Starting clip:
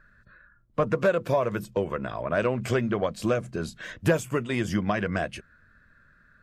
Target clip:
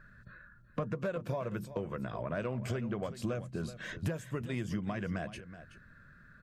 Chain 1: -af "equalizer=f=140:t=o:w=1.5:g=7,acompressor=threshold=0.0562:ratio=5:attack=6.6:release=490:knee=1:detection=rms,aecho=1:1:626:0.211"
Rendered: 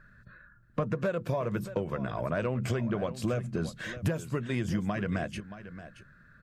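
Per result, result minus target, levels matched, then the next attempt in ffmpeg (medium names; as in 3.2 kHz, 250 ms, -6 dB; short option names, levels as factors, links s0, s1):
echo 250 ms late; compression: peak gain reduction -5 dB
-af "equalizer=f=140:t=o:w=1.5:g=7,acompressor=threshold=0.0562:ratio=5:attack=6.6:release=490:knee=1:detection=rms,aecho=1:1:376:0.211"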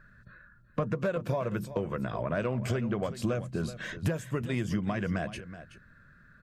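compression: peak gain reduction -5 dB
-af "equalizer=f=140:t=o:w=1.5:g=7,acompressor=threshold=0.0266:ratio=5:attack=6.6:release=490:knee=1:detection=rms,aecho=1:1:376:0.211"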